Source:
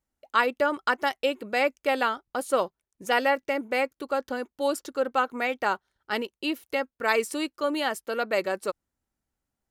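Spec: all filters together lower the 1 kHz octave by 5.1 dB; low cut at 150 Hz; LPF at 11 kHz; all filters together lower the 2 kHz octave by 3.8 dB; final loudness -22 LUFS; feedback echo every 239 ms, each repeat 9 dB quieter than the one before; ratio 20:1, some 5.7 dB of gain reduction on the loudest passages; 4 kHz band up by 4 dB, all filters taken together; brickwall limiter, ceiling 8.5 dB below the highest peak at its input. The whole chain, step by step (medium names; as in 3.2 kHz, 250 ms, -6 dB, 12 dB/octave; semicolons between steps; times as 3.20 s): high-pass 150 Hz; low-pass 11 kHz; peaking EQ 1 kHz -6 dB; peaking EQ 2 kHz -5 dB; peaking EQ 4 kHz +8 dB; compression 20:1, threshold -26 dBFS; peak limiter -22.5 dBFS; feedback delay 239 ms, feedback 35%, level -9 dB; trim +12 dB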